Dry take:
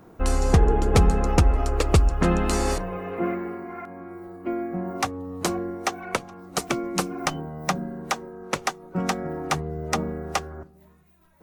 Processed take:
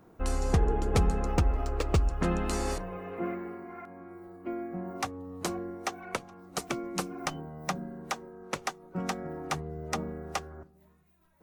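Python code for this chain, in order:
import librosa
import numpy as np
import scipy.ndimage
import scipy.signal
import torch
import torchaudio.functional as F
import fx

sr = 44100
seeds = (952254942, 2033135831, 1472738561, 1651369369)

y = fx.resample_linear(x, sr, factor=3, at=(1.32, 2.02))
y = y * librosa.db_to_amplitude(-7.5)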